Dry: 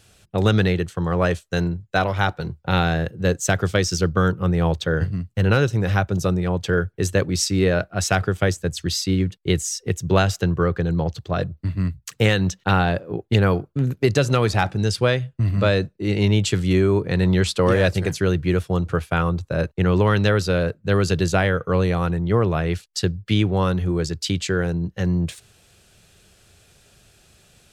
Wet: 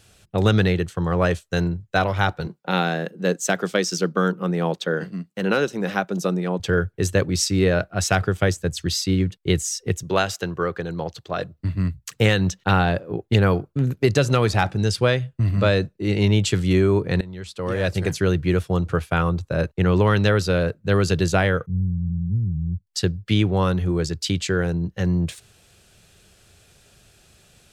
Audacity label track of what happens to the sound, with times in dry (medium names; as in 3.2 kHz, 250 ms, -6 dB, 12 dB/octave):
2.470000	6.600000	Chebyshev high-pass 180 Hz, order 4
10.030000	11.590000	high-pass 400 Hz 6 dB/octave
17.210000	18.060000	fade in quadratic, from -19 dB
21.660000	22.870000	inverse Chebyshev low-pass stop band from 610 Hz, stop band 60 dB